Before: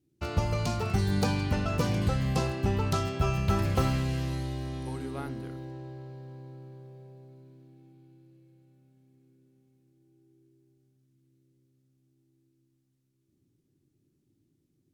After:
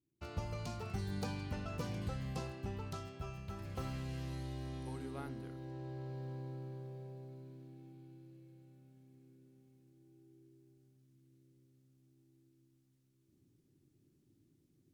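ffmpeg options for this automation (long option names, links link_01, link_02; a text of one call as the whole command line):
ffmpeg -i in.wav -af "volume=7.5dB,afade=type=out:start_time=2.26:duration=1.3:silence=0.446684,afade=type=in:start_time=3.56:duration=1.14:silence=0.251189,afade=type=in:start_time=5.56:duration=0.69:silence=0.375837" out.wav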